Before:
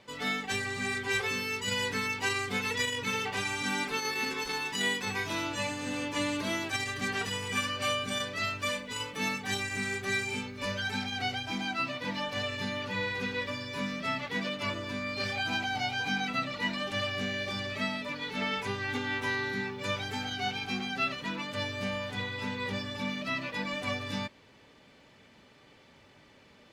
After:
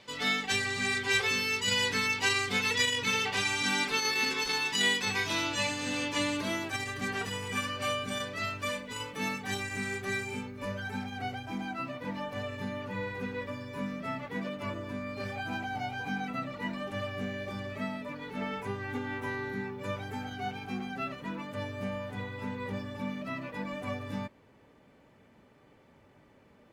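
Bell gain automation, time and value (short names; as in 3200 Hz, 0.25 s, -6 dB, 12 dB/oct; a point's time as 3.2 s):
bell 4300 Hz 2.1 oct
6.05 s +5.5 dB
6.67 s -4.5 dB
10 s -4.5 dB
10.7 s -14 dB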